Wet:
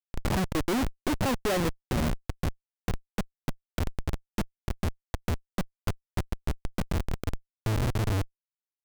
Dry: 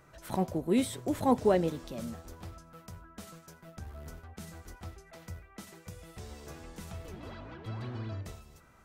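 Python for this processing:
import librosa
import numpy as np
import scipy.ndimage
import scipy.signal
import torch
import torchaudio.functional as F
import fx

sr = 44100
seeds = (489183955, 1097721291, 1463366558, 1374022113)

y = fx.transient(x, sr, attack_db=10, sustain_db=-6)
y = fx.schmitt(y, sr, flips_db=-34.5)
y = y * 10.0 ** (5.5 / 20.0)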